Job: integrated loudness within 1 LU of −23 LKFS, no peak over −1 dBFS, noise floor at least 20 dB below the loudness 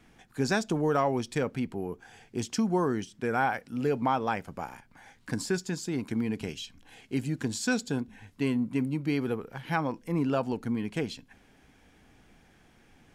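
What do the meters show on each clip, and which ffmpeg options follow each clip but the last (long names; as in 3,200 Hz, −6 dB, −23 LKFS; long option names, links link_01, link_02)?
integrated loudness −30.5 LKFS; sample peak −14.0 dBFS; target loudness −23.0 LKFS
→ -af "volume=7.5dB"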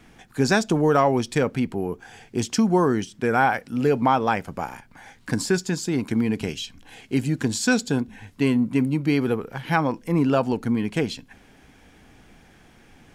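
integrated loudness −23.0 LKFS; sample peak −6.5 dBFS; background noise floor −54 dBFS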